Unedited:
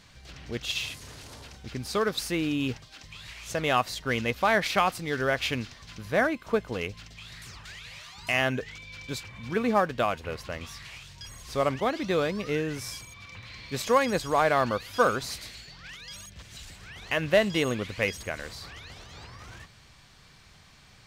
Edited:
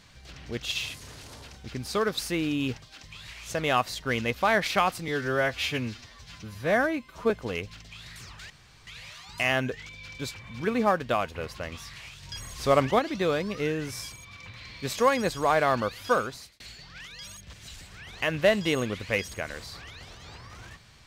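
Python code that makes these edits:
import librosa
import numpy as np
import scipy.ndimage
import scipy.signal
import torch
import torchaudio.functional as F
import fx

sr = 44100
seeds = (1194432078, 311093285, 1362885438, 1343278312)

y = fx.edit(x, sr, fx.stretch_span(start_s=5.08, length_s=1.48, factor=1.5),
    fx.insert_room_tone(at_s=7.76, length_s=0.37),
    fx.clip_gain(start_s=11.12, length_s=0.76, db=4.5),
    fx.fade_out_span(start_s=14.93, length_s=0.56), tone=tone)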